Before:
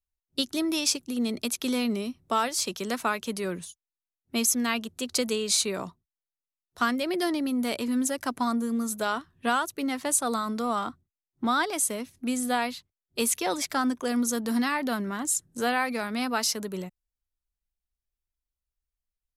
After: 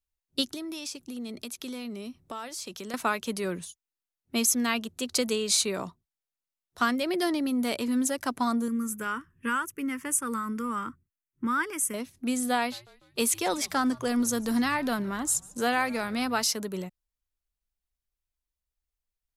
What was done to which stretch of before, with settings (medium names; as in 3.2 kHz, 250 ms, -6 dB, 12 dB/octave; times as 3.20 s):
0.54–2.94 s: compression 3:1, threshold -37 dBFS
8.68–11.94 s: static phaser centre 1.7 kHz, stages 4
12.57–16.43 s: frequency-shifting echo 147 ms, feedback 53%, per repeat -130 Hz, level -23 dB